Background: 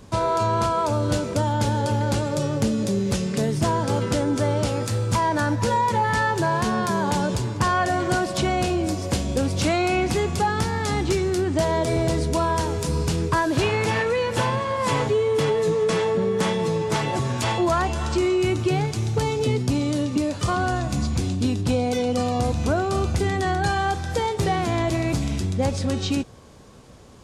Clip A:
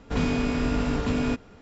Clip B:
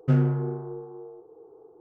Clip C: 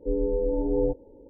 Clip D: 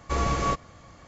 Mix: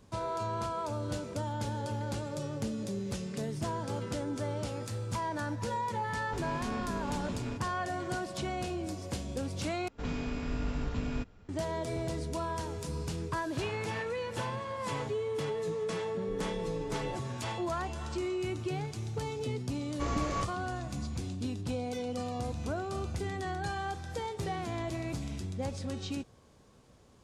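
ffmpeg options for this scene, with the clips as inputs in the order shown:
ffmpeg -i bed.wav -i cue0.wav -i cue1.wav -i cue2.wav -i cue3.wav -filter_complex "[1:a]asplit=2[link_01][link_02];[0:a]volume=-13dB[link_03];[link_01]alimiter=limit=-23dB:level=0:latency=1:release=71[link_04];[link_02]asubboost=boost=4.5:cutoff=170[link_05];[link_03]asplit=2[link_06][link_07];[link_06]atrim=end=9.884[link_08];[link_05]atrim=end=1.61,asetpts=PTS-STARTPTS,volume=-11dB[link_09];[link_07]atrim=start=11.486[link_10];[link_04]atrim=end=1.61,asetpts=PTS-STARTPTS,volume=-8.5dB,afade=type=in:duration=0.004:curve=hsin,afade=type=out:start_time=1.606:duration=0.004:curve=hsin,adelay=6220[link_11];[3:a]atrim=end=1.29,asetpts=PTS-STARTPTS,volume=-16dB,afade=type=in:duration=0.004:curve=hsin,afade=type=out:start_time=1.286:duration=0.004:curve=hsin,adelay=16220[link_12];[4:a]atrim=end=1.07,asetpts=PTS-STARTPTS,volume=-8dB,afade=type=in:duration=0.004:curve=hsin,afade=type=out:start_time=1.066:duration=0.004:curve=hsin,adelay=19900[link_13];[link_08][link_09]acrossfade=duration=0.004:curve1=hsin:curve2=hsin[link_14];[link_14][link_10]acrossfade=duration=0.004:curve1=hsin:curve2=hsin[link_15];[link_15][link_11][link_12][link_13]amix=inputs=4:normalize=0" out.wav

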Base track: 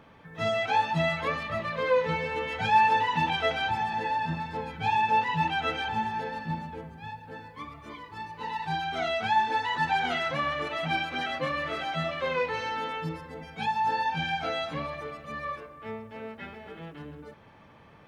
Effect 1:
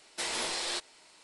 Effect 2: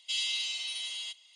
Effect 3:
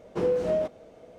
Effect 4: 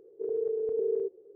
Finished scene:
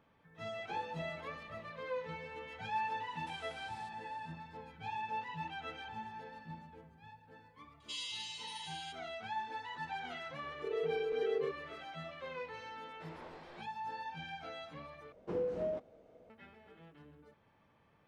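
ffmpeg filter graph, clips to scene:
ffmpeg -i bed.wav -i cue0.wav -i cue1.wav -i cue2.wav -i cue3.wav -filter_complex "[3:a]asplit=2[link_01][link_02];[1:a]asplit=2[link_03][link_04];[0:a]volume=-15.5dB[link_05];[link_01]acompressor=threshold=-36dB:ratio=6:attack=3.2:release=140:knee=1:detection=peak[link_06];[link_03]acompressor=threshold=-43dB:ratio=6:attack=3.2:release=140:knee=1:detection=peak[link_07];[2:a]aresample=22050,aresample=44100[link_08];[4:a]equalizer=frequency=130:width_type=o:width=2.2:gain=-11.5[link_09];[link_04]lowpass=1300[link_10];[link_02]lowpass=frequency=2500:poles=1[link_11];[link_05]asplit=2[link_12][link_13];[link_12]atrim=end=15.124[link_14];[link_11]atrim=end=1.18,asetpts=PTS-STARTPTS,volume=-10.5dB[link_15];[link_13]atrim=start=16.296[link_16];[link_06]atrim=end=1.18,asetpts=PTS-STARTPTS,volume=-11.5dB,afade=type=in:duration=0.004:curve=hsin,afade=type=out:start_time=1.176:duration=0.004:curve=hsin,adelay=540[link_17];[link_07]atrim=end=1.23,asetpts=PTS-STARTPTS,volume=-16dB,afade=type=in:duration=0.004:curve=hsin,afade=type=out:start_time=1.226:duration=0.004:curve=hsin,adelay=136269S[link_18];[link_08]atrim=end=1.35,asetpts=PTS-STARTPTS,volume=-10.5dB,afade=type=in:duration=0.004:curve=hsin,afade=type=out:start_time=1.346:duration=0.004:curve=hsin,adelay=7800[link_19];[link_09]atrim=end=1.35,asetpts=PTS-STARTPTS,volume=-2.5dB,afade=type=in:duration=0.004:curve=hsin,afade=type=out:start_time=1.346:duration=0.004:curve=hsin,adelay=10430[link_20];[link_10]atrim=end=1.23,asetpts=PTS-STARTPTS,volume=-12dB,afade=type=in:duration=0.004:curve=hsin,afade=type=out:start_time=1.226:duration=0.004:curve=hsin,adelay=12820[link_21];[link_14][link_15]acrossfade=duration=0.004:curve1=hsin:curve2=hsin[link_22];[link_22][link_16]acrossfade=duration=0.004:curve1=hsin:curve2=hsin[link_23];[link_23][link_17][link_18][link_19][link_20][link_21]amix=inputs=6:normalize=0" out.wav

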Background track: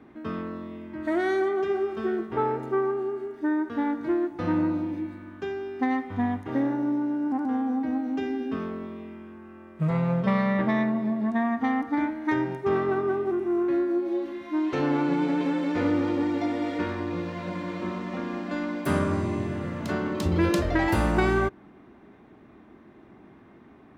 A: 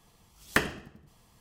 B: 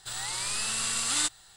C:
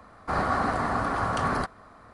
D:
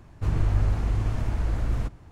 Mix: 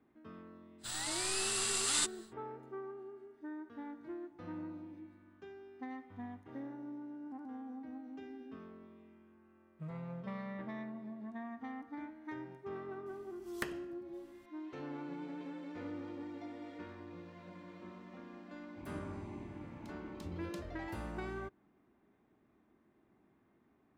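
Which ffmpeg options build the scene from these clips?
ffmpeg -i bed.wav -i cue0.wav -i cue1.wav -i cue2.wav -i cue3.wav -filter_complex "[0:a]volume=-19.5dB[link_01];[1:a]acompressor=threshold=-47dB:ratio=1.5:attack=79:release=697:knee=1:detection=peak[link_02];[4:a]asplit=3[link_03][link_04][link_05];[link_03]bandpass=frequency=300:width_type=q:width=8,volume=0dB[link_06];[link_04]bandpass=frequency=870:width_type=q:width=8,volume=-6dB[link_07];[link_05]bandpass=frequency=2240:width_type=q:width=8,volume=-9dB[link_08];[link_06][link_07][link_08]amix=inputs=3:normalize=0[link_09];[2:a]atrim=end=1.56,asetpts=PTS-STARTPTS,volume=-5dB,afade=type=in:duration=0.1,afade=type=out:start_time=1.46:duration=0.1,adelay=780[link_10];[link_02]atrim=end=1.4,asetpts=PTS-STARTPTS,volume=-10dB,afade=type=in:duration=0.004:curve=hsin,afade=type=out:start_time=1.396:duration=0.004:curve=hsin,adelay=13060[link_11];[link_09]atrim=end=2.11,asetpts=PTS-STARTPTS,volume=-5.5dB,afade=type=in:duration=0.004:curve=hsin,afade=type=out:start_time=2.106:duration=0.004:curve=hsin,adelay=18550[link_12];[link_01][link_10][link_11][link_12]amix=inputs=4:normalize=0" out.wav

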